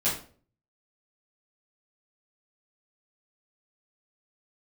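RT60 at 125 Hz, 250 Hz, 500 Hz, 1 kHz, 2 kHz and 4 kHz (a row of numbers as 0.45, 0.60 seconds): 0.65, 0.55, 0.50, 0.40, 0.35, 0.30 seconds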